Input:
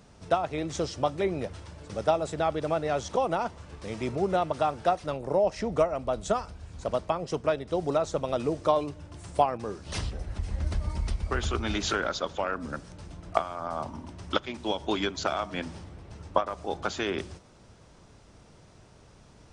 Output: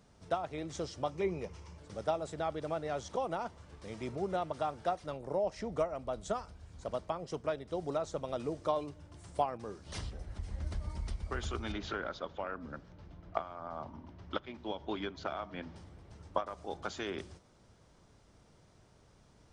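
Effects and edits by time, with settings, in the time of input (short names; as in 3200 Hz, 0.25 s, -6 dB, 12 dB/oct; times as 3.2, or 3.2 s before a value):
1.11–1.78 ripple EQ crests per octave 0.79, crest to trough 8 dB
11.72–15.76 air absorption 190 m
whole clip: notch 2600 Hz, Q 21; gain -8.5 dB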